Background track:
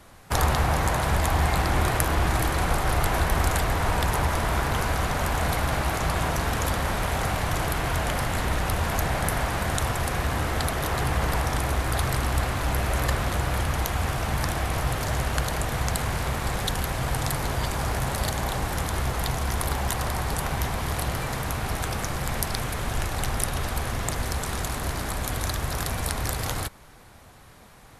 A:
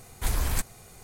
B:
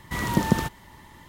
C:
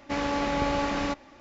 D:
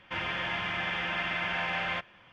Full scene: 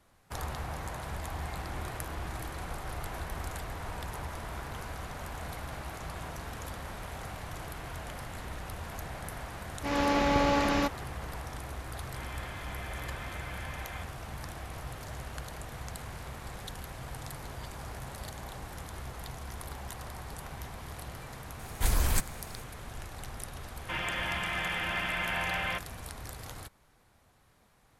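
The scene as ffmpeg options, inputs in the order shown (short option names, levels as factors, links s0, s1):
-filter_complex "[4:a]asplit=2[s0][s1];[0:a]volume=0.178[s2];[3:a]dynaudnorm=f=120:g=3:m=2.51[s3];[s0]bandreject=f=2800:w=8.3[s4];[s3]atrim=end=1.4,asetpts=PTS-STARTPTS,volume=0.447,afade=t=in:d=0.004:c=hsin,afade=t=out:st=1.396:d=0.004:c=hsin,adelay=9740[s5];[s4]atrim=end=2.32,asetpts=PTS-STARTPTS,volume=0.224,afade=t=in:d=0.004:c=hsin,afade=t=out:st=2.316:d=0.004:c=hsin,adelay=12040[s6];[1:a]atrim=end=1.03,asetpts=PTS-STARTPTS,afade=t=in:d=0.004:c=hsin,afade=t=out:st=1.026:d=0.004:c=hsin,adelay=21590[s7];[s1]atrim=end=2.32,asetpts=PTS-STARTPTS,volume=0.891,afade=t=in:d=0.004:c=hsin,afade=t=out:st=2.316:d=0.004:c=hsin,adelay=23780[s8];[s2][s5][s6][s7][s8]amix=inputs=5:normalize=0"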